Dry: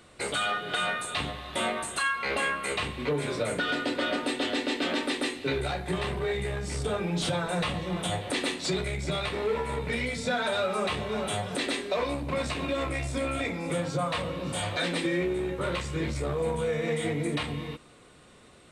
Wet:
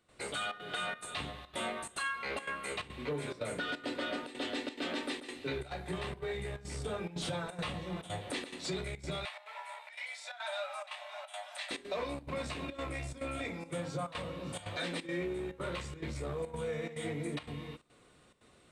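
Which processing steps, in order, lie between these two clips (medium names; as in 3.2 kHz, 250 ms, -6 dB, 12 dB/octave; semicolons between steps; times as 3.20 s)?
trance gate ".xxxxx.xxxx" 176 bpm -12 dB; 9.25–11.71 s: rippled Chebyshev high-pass 590 Hz, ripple 3 dB; trim -8 dB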